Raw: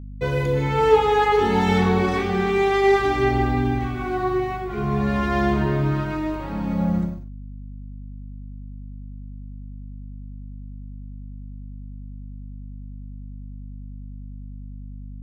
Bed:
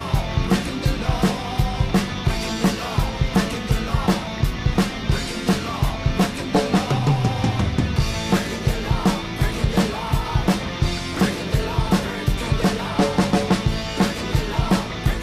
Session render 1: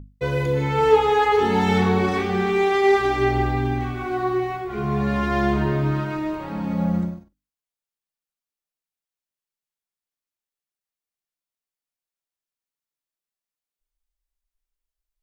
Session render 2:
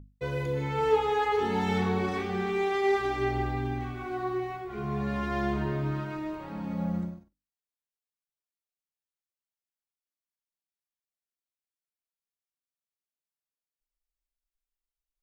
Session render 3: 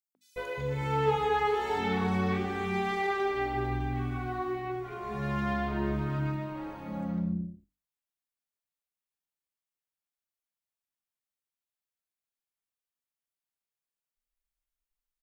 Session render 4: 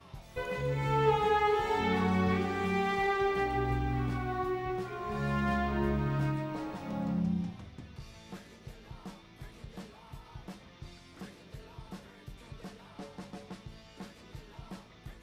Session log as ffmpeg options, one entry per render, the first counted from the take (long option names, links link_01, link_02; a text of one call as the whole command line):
ffmpeg -i in.wav -af "bandreject=frequency=50:width_type=h:width=6,bandreject=frequency=100:width_type=h:width=6,bandreject=frequency=150:width_type=h:width=6,bandreject=frequency=200:width_type=h:width=6,bandreject=frequency=250:width_type=h:width=6,bandreject=frequency=300:width_type=h:width=6" out.wav
ffmpeg -i in.wav -af "volume=-8.5dB" out.wav
ffmpeg -i in.wav -filter_complex "[0:a]acrossover=split=380|5300[link_01][link_02][link_03];[link_02]adelay=150[link_04];[link_01]adelay=360[link_05];[link_05][link_04][link_03]amix=inputs=3:normalize=0" out.wav
ffmpeg -i in.wav -i bed.wav -filter_complex "[1:a]volume=-27dB[link_01];[0:a][link_01]amix=inputs=2:normalize=0" out.wav